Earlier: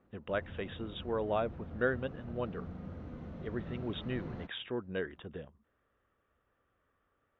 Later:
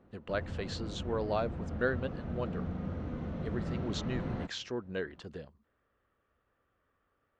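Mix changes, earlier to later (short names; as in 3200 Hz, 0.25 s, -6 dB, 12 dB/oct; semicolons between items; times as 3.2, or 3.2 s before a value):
speech: remove brick-wall FIR low-pass 3800 Hz; background +7.0 dB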